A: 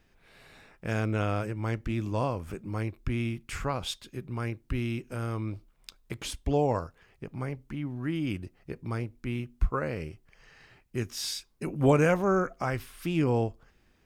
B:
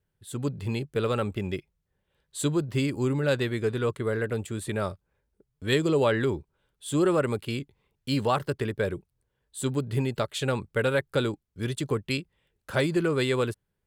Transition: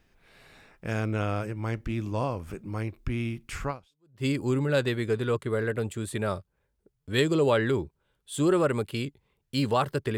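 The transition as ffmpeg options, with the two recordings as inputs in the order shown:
ffmpeg -i cue0.wav -i cue1.wav -filter_complex "[0:a]apad=whole_dur=10.17,atrim=end=10.17,atrim=end=4.26,asetpts=PTS-STARTPTS[link_01];[1:a]atrim=start=2.24:end=8.71,asetpts=PTS-STARTPTS[link_02];[link_01][link_02]acrossfade=duration=0.56:curve1=exp:curve2=exp" out.wav

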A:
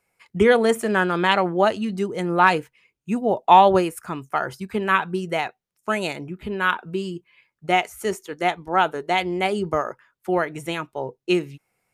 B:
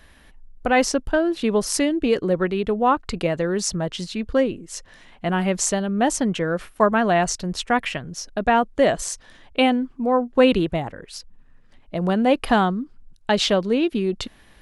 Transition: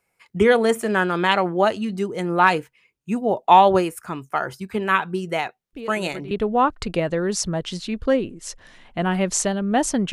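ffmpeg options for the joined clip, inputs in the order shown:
ffmpeg -i cue0.wav -i cue1.wav -filter_complex "[1:a]asplit=2[link_01][link_02];[0:a]apad=whole_dur=10.12,atrim=end=10.12,atrim=end=6.312[link_03];[link_02]atrim=start=2.578:end=6.39[link_04];[link_01]atrim=start=2:end=2.58,asetpts=PTS-STARTPTS,volume=-14.5dB,afade=type=in:duration=0.004:curve=hsin,afade=type=out:start_time=0.576:duration=0.004:curve=hsin,adelay=252693S[link_05];[link_03][link_04]acrossfade=duration=0.004:curve1=hsin:curve2=hsin[link_06];[link_06][link_05]amix=inputs=2:normalize=0" out.wav

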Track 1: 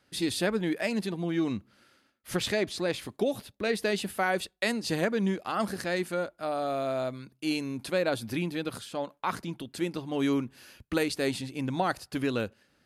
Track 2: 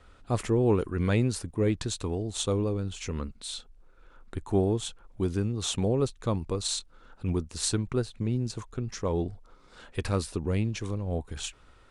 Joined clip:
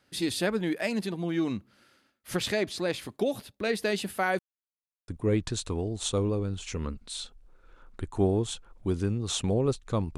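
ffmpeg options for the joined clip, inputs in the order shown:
ffmpeg -i cue0.wav -i cue1.wav -filter_complex "[0:a]apad=whole_dur=10.17,atrim=end=10.17,asplit=2[link_01][link_02];[link_01]atrim=end=4.39,asetpts=PTS-STARTPTS,afade=type=out:start_time=4.386:duration=0.004:curve=hsin[link_03];[link_02]atrim=start=4.39:end=5.08,asetpts=PTS-STARTPTS,volume=0[link_04];[1:a]atrim=start=1.42:end=6.51,asetpts=PTS-STARTPTS,afade=type=in:duration=0.004:curve=hsin[link_05];[link_03][link_04][link_05]concat=n=3:v=0:a=1" out.wav

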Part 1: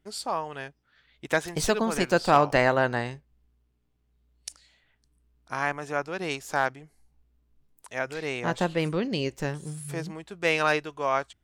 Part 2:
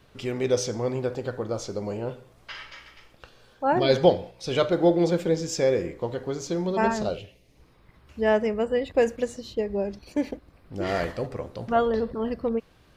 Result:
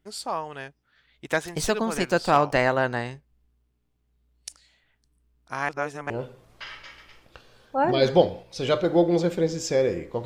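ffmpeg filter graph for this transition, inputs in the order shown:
ffmpeg -i cue0.wav -i cue1.wav -filter_complex "[0:a]apad=whole_dur=10.25,atrim=end=10.25,asplit=2[link_01][link_02];[link_01]atrim=end=5.692[link_03];[link_02]atrim=start=5.688:end=6.102,asetpts=PTS-STARTPTS,areverse[link_04];[1:a]atrim=start=1.978:end=6.13[link_05];[link_03][link_04]acrossfade=duration=0.004:curve1=hsin:curve2=hsin[link_06];[link_06][link_05]acrossfade=duration=0.004:curve1=hsin:curve2=hsin" out.wav

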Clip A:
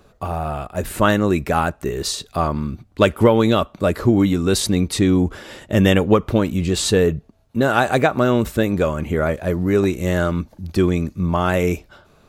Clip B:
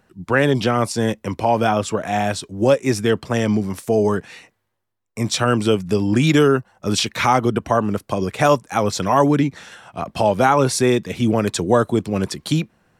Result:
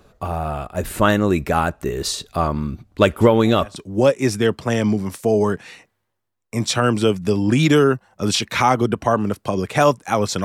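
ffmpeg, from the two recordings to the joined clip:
ffmpeg -i cue0.wav -i cue1.wav -filter_complex "[1:a]asplit=2[link_01][link_02];[0:a]apad=whole_dur=10.44,atrim=end=10.44,atrim=end=3.762[link_03];[link_02]atrim=start=2.398:end=9.08[link_04];[link_01]atrim=start=1.85:end=2.4,asetpts=PTS-STARTPTS,volume=-16.5dB,afade=type=in:duration=0.004:curve=hsin,afade=type=out:start_time=0.546:duration=0.004:curve=hsin,adelay=141561S[link_05];[link_03][link_04]acrossfade=duration=0.004:curve1=hsin:curve2=hsin[link_06];[link_06][link_05]amix=inputs=2:normalize=0" out.wav

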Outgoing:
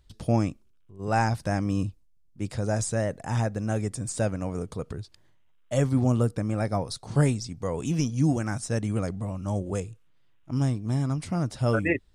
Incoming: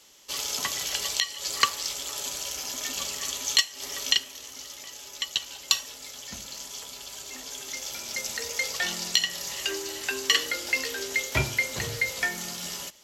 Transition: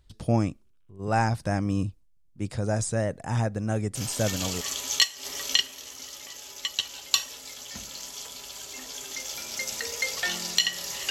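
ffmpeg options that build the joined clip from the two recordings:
ffmpeg -i cue0.wav -i cue1.wav -filter_complex "[0:a]apad=whole_dur=11.1,atrim=end=11.1,atrim=end=4.61,asetpts=PTS-STARTPTS[link_01];[1:a]atrim=start=2.52:end=9.67,asetpts=PTS-STARTPTS[link_02];[link_01][link_02]acrossfade=duration=0.66:curve1=log:curve2=log" out.wav

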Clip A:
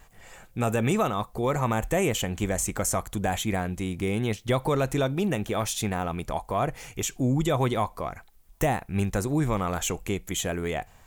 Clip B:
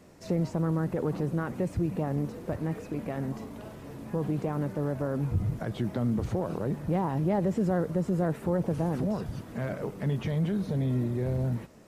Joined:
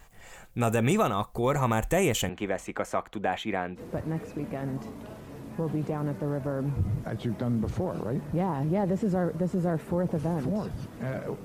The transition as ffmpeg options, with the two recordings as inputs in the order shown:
ffmpeg -i cue0.wav -i cue1.wav -filter_complex "[0:a]asettb=1/sr,asplit=3[link_01][link_02][link_03];[link_01]atrim=end=2.294[link_04];[link_02]atrim=start=2.29:end=3.81,asetpts=PTS-STARTPTS,afade=type=in:duration=0.004:curve=qsin,afade=type=out:start_time=1.516:duration=0.004:curve=qsin,acrossover=split=220 3500:gain=0.158 1 0.0794[link_05][link_06][link_07];[link_05][link_06][link_07]amix=inputs=3:normalize=0[link_08];[link_03]atrim=start=3.806[link_09];[link_04][link_08]acrossfade=duration=0.004:curve1=hsin:curve2=qsin[link_10];[link_10][link_09]acrossfade=duration=0.004:curve1=qsin:curve2=hsin,apad=whole_dur=11.44,atrim=end=11.44,atrim=end=3.81,asetpts=PTS-STARTPTS[link_11];[1:a]atrim=start=2.3:end=9.99,asetpts=PTS-STARTPTS[link_12];[link_11][link_12]acrossfade=duration=0.06:curve1=tri:curve2=tri" out.wav

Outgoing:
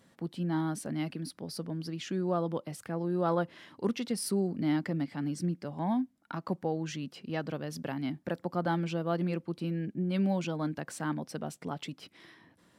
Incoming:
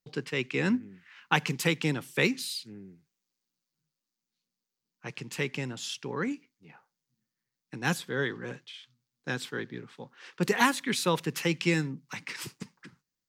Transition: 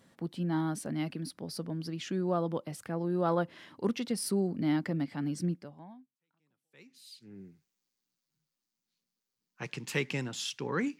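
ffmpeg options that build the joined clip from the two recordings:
ffmpeg -i cue0.wav -i cue1.wav -filter_complex "[0:a]apad=whole_dur=10.99,atrim=end=10.99,atrim=end=7.4,asetpts=PTS-STARTPTS[link_01];[1:a]atrim=start=0.96:end=6.43,asetpts=PTS-STARTPTS[link_02];[link_01][link_02]acrossfade=duration=1.88:curve1=exp:curve2=exp" out.wav

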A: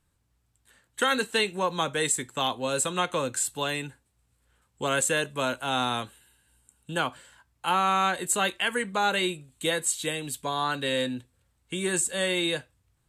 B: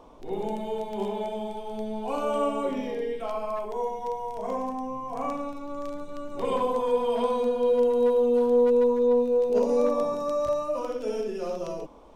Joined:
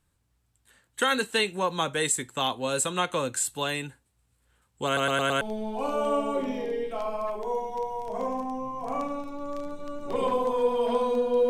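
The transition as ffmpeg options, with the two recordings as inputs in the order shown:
ffmpeg -i cue0.wav -i cue1.wav -filter_complex "[0:a]apad=whole_dur=11.49,atrim=end=11.49,asplit=5[link_01][link_02][link_03][link_04][link_05];[link_01]atrim=end=4.972[link_06];[link_02]atrim=start=4.858:end=4.972[link_07];[link_03]atrim=start=4.858:end=4.972[link_08];[link_04]atrim=start=4.858:end=4.972[link_09];[link_05]atrim=start=4.858:end=4.972[link_10];[1:a]atrim=start=1.698:end=7.78[link_11];[link_06][link_07]acrossfade=duration=0.004:curve1=hsin:curve2=hsin[link_12];[link_12][link_08]acrossfade=duration=0.004:curve1=hsin:curve2=hsin[link_13];[link_13][link_09]acrossfade=duration=0.004:curve1=hsin:curve2=hsin[link_14];[link_14][link_10]acrossfade=duration=0.004:curve1=hsin:curve2=hsin[link_15];[link_15][link_11]acrossfade=duration=0.004:curve1=hsin:curve2=hsin" out.wav

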